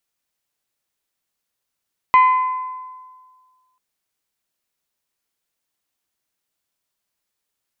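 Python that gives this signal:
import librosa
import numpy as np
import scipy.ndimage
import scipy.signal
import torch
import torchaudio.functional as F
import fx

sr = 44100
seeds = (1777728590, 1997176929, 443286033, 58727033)

y = fx.strike_glass(sr, length_s=1.64, level_db=-7.0, body='bell', hz=1020.0, decay_s=1.67, tilt_db=10.5, modes=5)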